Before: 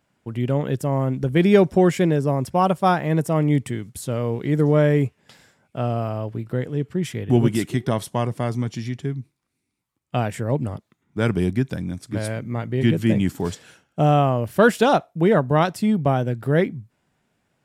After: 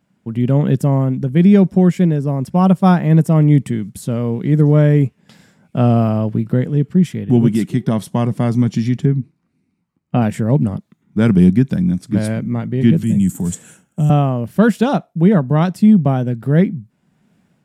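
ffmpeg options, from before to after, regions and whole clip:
ffmpeg -i in.wav -filter_complex "[0:a]asettb=1/sr,asplit=3[link_01][link_02][link_03];[link_01]atrim=end=9.054[link_04];[link_02]atrim=start=9.05:end=10.22,asetpts=PTS-STARTPTS,afade=type=in:duration=0.004:curve=qsin,afade=type=out:start_time=1.166:duration=0.004:curve=qsin,aemphasis=mode=reproduction:type=75kf,bandreject=frequency=3400:width=8.5,asplit=2[link_05][link_06];[link_06]adelay=12,volume=-12.5dB[link_07];[link_05][link_07]amix=inputs=2:normalize=0,atrim=end_sample=51597[link_08];[link_03]atrim=start=10.216[link_09];[link_04][link_08]acrossfade=duration=0.004:curve1=hsin:curve2=qsin[link_10];[link_10][link_09]acrossfade=duration=0.004:curve1=qsin:curve2=hsin,asettb=1/sr,asplit=3[link_11][link_12][link_13];[link_11]atrim=end=13.034[link_14];[link_12]atrim=start=13.03:end=14.1,asetpts=PTS-STARTPTS,afade=type=in:duration=0.004:curve=qsin,afade=type=out:start_time=1.066:duration=0.004:curve=qsin,highshelf=frequency=6100:width_type=q:width=3:gain=8,acrossover=split=180|3000[link_15][link_16][link_17];[link_16]acompressor=threshold=-32dB:ratio=4:attack=3.2:release=140:knee=2.83:detection=peak[link_18];[link_15][link_18][link_17]amix=inputs=3:normalize=0[link_19];[link_13]atrim=start=14.096[link_20];[link_14][link_19]acrossfade=duration=0.004:curve1=hsin:curve2=qsin[link_21];[link_21][link_20]acrossfade=duration=0.004:curve1=qsin:curve2=hsin,equalizer=frequency=190:width=1.4:gain=13.5,dynaudnorm=framelen=220:gausssize=5:maxgain=11.5dB,volume=-1dB" out.wav

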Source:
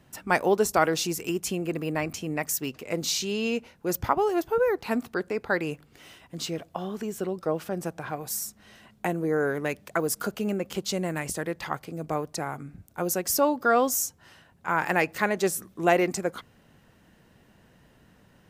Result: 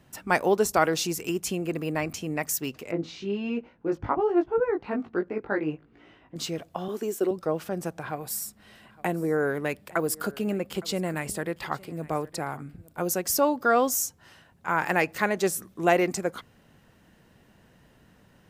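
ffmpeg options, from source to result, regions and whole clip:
ffmpeg -i in.wav -filter_complex "[0:a]asettb=1/sr,asplit=3[link_01][link_02][link_03];[link_01]atrim=end=2.914[link_04];[link_02]atrim=start=2.91:end=6.36,asetpts=PTS-STARTPTS,afade=type=in:duration=0.004:curve=qsin,afade=type=out:start_time=3.446:duration=0.004:curve=qsin,lowpass=2100,equalizer=frequency=310:width=2.4:gain=7.5,flanger=delay=17:depth=3:speed=1.3[link_05];[link_03]atrim=start=6.356[link_06];[link_04][link_05]acrossfade=duration=0.004:curve1=hsin:curve2=qsin[link_07];[link_07][link_06]acrossfade=duration=0.004:curve1=qsin:curve2=hsin,asettb=1/sr,asplit=3[link_08][link_09][link_10];[link_08]atrim=end=6.884[link_11];[link_09]atrim=start=6.88:end=7.31,asetpts=PTS-STARTPTS,afade=type=in:duration=0.004:curve=qsin,afade=type=out:start_time=0.426:duration=0.004:curve=qsin,agate=range=-33dB:threshold=-37dB:ratio=3:release=100:detection=peak,highpass=frequency=320:width_type=q:width=2.3,highshelf=frequency=7300:gain=8.5[link_12];[link_10]atrim=start=7.306[link_13];[link_11][link_12]acrossfade=duration=0.004:curve1=hsin:curve2=qsin[link_14];[link_14][link_13]acrossfade=duration=0.004:curve1=qsin:curve2=hsin,asettb=1/sr,asplit=3[link_15][link_16][link_17];[link_15]atrim=end=8.034[link_18];[link_16]atrim=start=8.03:end=13.01,asetpts=PTS-STARTPTS,afade=type=in:duration=0.004:curve=qsin,afade=type=out:start_time=4.976:duration=0.004:curve=qsin,equalizer=frequency=6200:width=5.8:gain=-8.5,aecho=1:1:862:0.0841,atrim=end_sample=219618[link_19];[link_17]atrim=start=13.006[link_20];[link_18][link_19]acrossfade=duration=0.004:curve1=hsin:curve2=qsin[link_21];[link_21][link_20]acrossfade=duration=0.004:curve1=qsin:curve2=hsin" out.wav

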